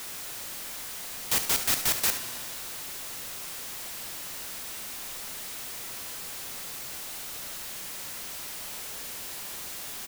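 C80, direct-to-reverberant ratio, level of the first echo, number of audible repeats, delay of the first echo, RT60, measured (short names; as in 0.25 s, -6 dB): 10.0 dB, 6.5 dB, -11.5 dB, 1, 71 ms, 2.6 s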